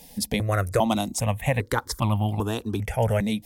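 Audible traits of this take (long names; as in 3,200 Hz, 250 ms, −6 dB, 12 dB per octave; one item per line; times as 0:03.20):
notches that jump at a steady rate 2.5 Hz 360–1,700 Hz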